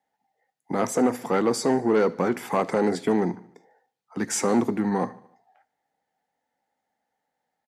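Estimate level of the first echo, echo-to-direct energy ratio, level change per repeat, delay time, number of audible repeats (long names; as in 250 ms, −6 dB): −22.0 dB, −20.0 dB, −4.5 dB, 74 ms, 3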